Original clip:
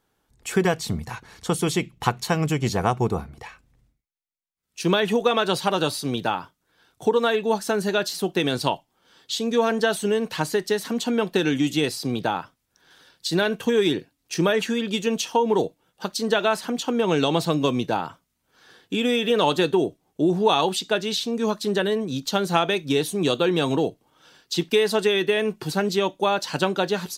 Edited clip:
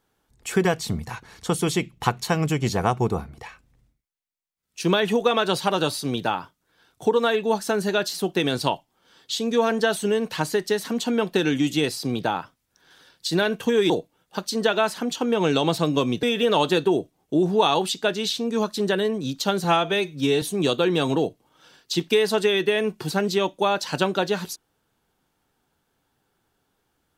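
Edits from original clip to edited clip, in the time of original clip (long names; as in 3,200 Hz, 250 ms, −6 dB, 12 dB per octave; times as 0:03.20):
0:13.90–0:15.57: remove
0:17.90–0:19.10: remove
0:22.51–0:23.03: time-stretch 1.5×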